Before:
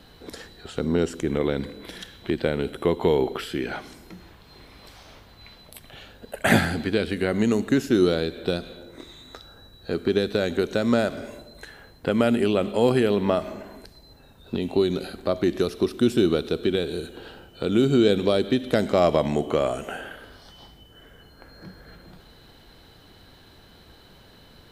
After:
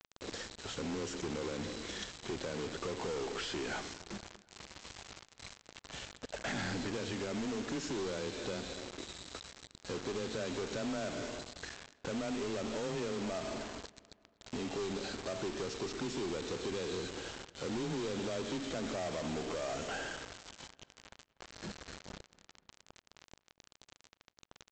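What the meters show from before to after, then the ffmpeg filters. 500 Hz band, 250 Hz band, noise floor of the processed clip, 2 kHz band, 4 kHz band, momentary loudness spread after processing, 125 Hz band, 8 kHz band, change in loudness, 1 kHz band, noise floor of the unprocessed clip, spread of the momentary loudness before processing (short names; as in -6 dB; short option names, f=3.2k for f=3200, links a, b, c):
-15.5 dB, -16.0 dB, -79 dBFS, -11.5 dB, -8.5 dB, 14 LU, -15.0 dB, -2.0 dB, -16.0 dB, -12.0 dB, -52 dBFS, 20 LU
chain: -filter_complex "[0:a]adynamicequalizer=threshold=0.00251:dfrequency=6200:dqfactor=1.7:tfrequency=6200:tqfactor=1.7:attack=5:release=100:ratio=0.375:range=2.5:mode=boostabove:tftype=bell,alimiter=limit=-14.5dB:level=0:latency=1,acompressor=threshold=-26dB:ratio=6,aeval=exprs='(tanh(39.8*val(0)+0.2)-tanh(0.2))/39.8':c=same,afreqshift=18,aresample=16000,acrusher=bits=6:mix=0:aa=0.000001,aresample=44100,asplit=2[a][b];[b]adelay=243,lowpass=f=3.7k:p=1,volume=-21dB,asplit=2[c][d];[d]adelay=243,lowpass=f=3.7k:p=1,volume=0.51,asplit=2[e][f];[f]adelay=243,lowpass=f=3.7k:p=1,volume=0.51,asplit=2[g][h];[h]adelay=243,lowpass=f=3.7k:p=1,volume=0.51[i];[a][c][e][g][i]amix=inputs=5:normalize=0,volume=-2dB"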